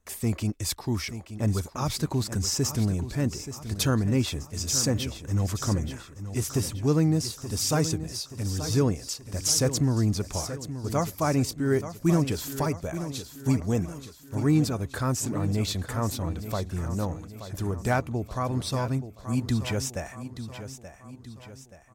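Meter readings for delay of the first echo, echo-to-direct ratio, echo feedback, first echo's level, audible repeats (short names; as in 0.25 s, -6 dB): 0.878 s, -10.5 dB, 49%, -11.5 dB, 4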